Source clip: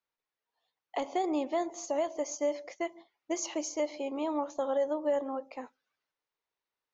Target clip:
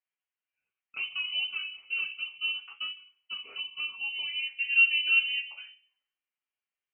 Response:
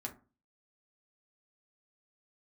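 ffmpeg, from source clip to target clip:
-filter_complex "[0:a]asettb=1/sr,asplit=3[a][b][c];[a]atrim=end=2.254[d];[b]atrim=start=2.25:end=2.9,asetpts=PTS-STARTPTS,afade=t=in:d=0.004:c=qsin,afade=t=out:st=0.646:d=0.004:c=qsin,lowshelf=f=300:g=11.5[e];[c]atrim=start=2.896[f];[d][e]acrossfade=d=0.004:c1=hsin:c2=qsin[g];[g][f]acrossfade=d=0.004:c1=qsin:c2=hsin,asplit=3[h][i][j];[h]afade=t=out:st=4.72:d=0.02[k];[i]acontrast=49,afade=t=in:st=4.72:d=0.02,afade=t=out:st=5.47:d=0.02[l];[j]afade=t=in:st=5.47:d=0.02[m];[k][l][m]amix=inputs=3:normalize=0[n];[1:a]atrim=start_sample=2205,asetrate=32634,aresample=44100[o];[n][o]afir=irnorm=-1:irlink=0,lowpass=f=2.8k:t=q:w=0.5098,lowpass=f=2.8k:t=q:w=0.6013,lowpass=f=2.8k:t=q:w=0.9,lowpass=f=2.8k:t=q:w=2.563,afreqshift=-3300,volume=-4dB"

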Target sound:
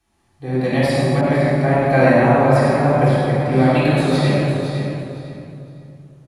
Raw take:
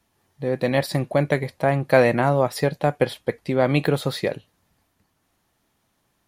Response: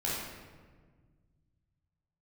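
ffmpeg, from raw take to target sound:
-filter_complex "[0:a]equalizer=f=460:w=6.1:g=-10,aecho=1:1:509|1018|1527:0.376|0.0864|0.0199[a];[1:a]atrim=start_sample=2205,asetrate=22932,aresample=44100[b];[a][b]afir=irnorm=-1:irlink=0,asettb=1/sr,asplit=3[c][d][e];[c]atrim=end=1.214[f];[d]atrim=start=1.21:end=3.52,asetpts=PTS-STARTPTS,afade=t=in:d=0.004:c=qsin,afade=t=out:st=2.306:d=0.004:c=qsin,adynamicequalizer=threshold=0.0631:dfrequency=2400:dqfactor=0.7:tfrequency=2400:tqfactor=0.7:attack=5:release=100:ratio=0.375:range=2.5:mode=cutabove:tftype=highshelf[g];[e]atrim=start=3.516[h];[f][g]acrossfade=d=0.004:c1=hsin:c2=qsin[i];[i][h]acrossfade=d=0.004:c1=qsin:c2=hsin,volume=-5.5dB"

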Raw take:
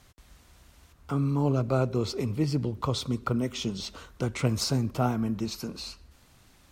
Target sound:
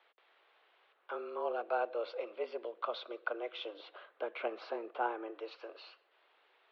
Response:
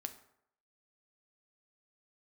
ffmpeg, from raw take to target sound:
-filter_complex "[0:a]highpass=f=350:t=q:w=0.5412,highpass=f=350:t=q:w=1.307,lowpass=f=3.4k:t=q:w=0.5176,lowpass=f=3.4k:t=q:w=0.7071,lowpass=f=3.4k:t=q:w=1.932,afreqshift=110,asplit=3[a][b][c];[a]afade=t=out:st=3.73:d=0.02[d];[b]aemphasis=mode=reproduction:type=bsi,afade=t=in:st=3.73:d=0.02,afade=t=out:st=5.3:d=0.02[e];[c]afade=t=in:st=5.3:d=0.02[f];[d][e][f]amix=inputs=3:normalize=0,volume=-5dB"

